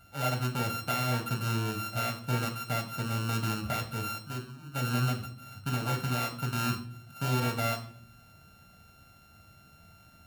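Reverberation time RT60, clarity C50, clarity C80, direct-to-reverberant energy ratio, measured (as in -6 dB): 0.55 s, 11.0 dB, 14.5 dB, 3.5 dB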